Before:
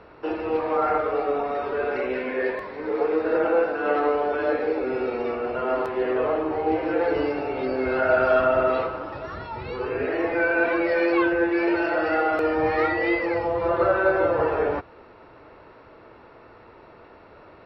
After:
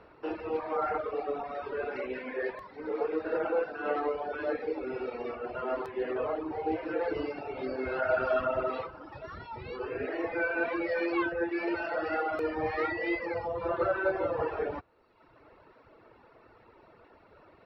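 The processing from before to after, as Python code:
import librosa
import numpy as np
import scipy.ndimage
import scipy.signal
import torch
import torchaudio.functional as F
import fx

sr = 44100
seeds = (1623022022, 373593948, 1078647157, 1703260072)

y = fx.dereverb_blind(x, sr, rt60_s=1.1)
y = F.gain(torch.from_numpy(y), -6.5).numpy()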